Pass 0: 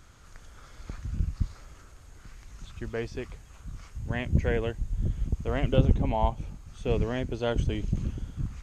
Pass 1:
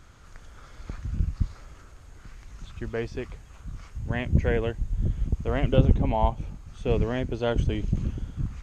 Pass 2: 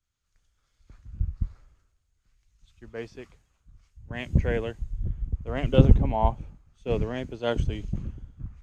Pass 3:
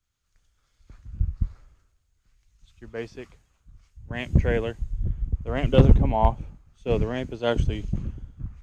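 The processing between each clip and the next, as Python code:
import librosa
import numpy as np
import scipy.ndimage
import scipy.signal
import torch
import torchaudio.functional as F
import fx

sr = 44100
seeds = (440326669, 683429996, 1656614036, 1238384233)

y1 = fx.high_shelf(x, sr, hz=5000.0, db=-6.0)
y1 = F.gain(torch.from_numpy(y1), 2.5).numpy()
y2 = fx.band_widen(y1, sr, depth_pct=100)
y2 = F.gain(torch.from_numpy(y2), -4.0).numpy()
y3 = np.clip(y2, -10.0 ** (-9.0 / 20.0), 10.0 ** (-9.0 / 20.0))
y3 = F.gain(torch.from_numpy(y3), 3.0).numpy()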